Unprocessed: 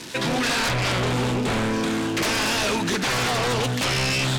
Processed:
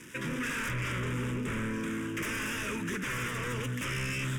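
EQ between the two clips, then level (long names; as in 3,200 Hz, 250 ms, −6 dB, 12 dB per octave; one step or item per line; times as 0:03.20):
phaser with its sweep stopped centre 1,800 Hz, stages 4
−8.0 dB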